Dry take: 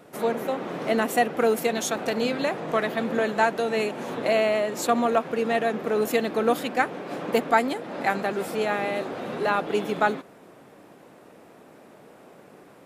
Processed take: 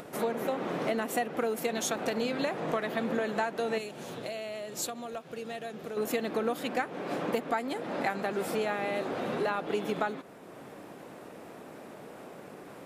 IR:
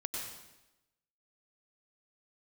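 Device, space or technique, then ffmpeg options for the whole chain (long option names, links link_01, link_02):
upward and downward compression: -filter_complex "[0:a]acompressor=mode=upward:threshold=-40dB:ratio=2.5,acompressor=threshold=-27dB:ratio=6,asettb=1/sr,asplit=3[link_01][link_02][link_03];[link_01]atrim=end=3.784[link_04];[link_02]atrim=start=3.78:end=5.97,asetpts=PTS-STARTPTS,afade=type=in:duration=0.004:curve=qsin,afade=type=out:start_time=2.186:duration=0.004:curve=qsin,equalizer=frequency=250:width_type=o:width=1:gain=-9,equalizer=frequency=500:width_type=o:width=1:gain=-5,equalizer=frequency=1000:width_type=o:width=1:gain=-9,equalizer=frequency=2000:width_type=o:width=1:gain=-7[link_05];[link_03]atrim=start=5.966[link_06];[link_04][link_05]acrossfade=duration=0.004:curve1=hsin:curve2=qsin[link_07];[link_07][link_06]acrossfade=duration=0.004:curve1=qsin:curve2=hsin"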